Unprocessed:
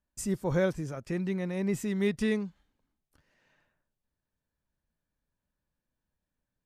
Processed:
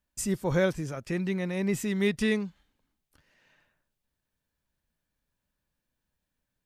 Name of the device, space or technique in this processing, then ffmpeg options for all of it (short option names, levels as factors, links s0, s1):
presence and air boost: -af "equalizer=f=2900:t=o:w=1.8:g=4.5,highshelf=f=9100:g=5,volume=1.19"